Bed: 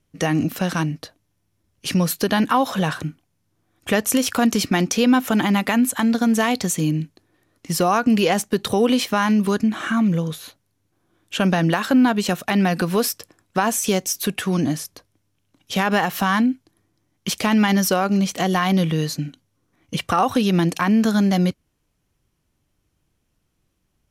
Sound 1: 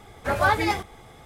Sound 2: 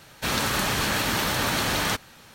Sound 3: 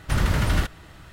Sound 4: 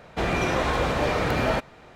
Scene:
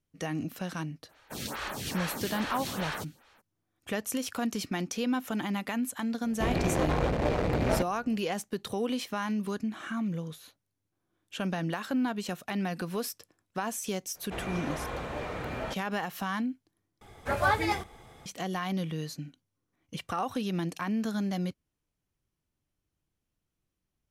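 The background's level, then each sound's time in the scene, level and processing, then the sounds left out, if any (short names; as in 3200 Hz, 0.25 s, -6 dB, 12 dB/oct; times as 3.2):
bed -13.5 dB
1.08 add 2 -8.5 dB, fades 0.02 s + photocell phaser 2.4 Hz
6.23 add 4 -1.5 dB + Wiener smoothing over 41 samples
14.14 add 4 -12 dB, fades 0.02 s + bell 4900 Hz -5 dB
17.01 replace with 1 -5 dB
not used: 3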